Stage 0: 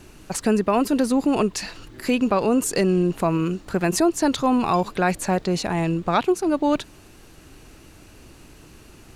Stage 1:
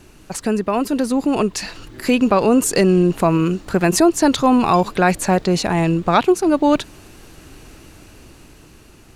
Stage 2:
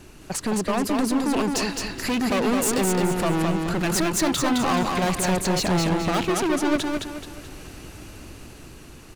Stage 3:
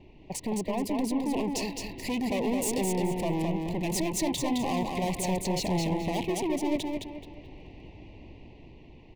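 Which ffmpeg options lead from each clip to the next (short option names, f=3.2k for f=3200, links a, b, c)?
-af "dynaudnorm=f=350:g=9:m=8.5dB"
-af "volume=21.5dB,asoftclip=hard,volume=-21.5dB,aecho=1:1:214|428|642|856|1070:0.668|0.247|0.0915|0.0339|0.0125"
-filter_complex "[0:a]acrossover=split=3300[a][b];[b]aeval=exprs='sgn(val(0))*max(abs(val(0))-0.00891,0)':c=same[c];[a][c]amix=inputs=2:normalize=0,asuperstop=centerf=1400:order=8:qfactor=1.5,volume=-6dB"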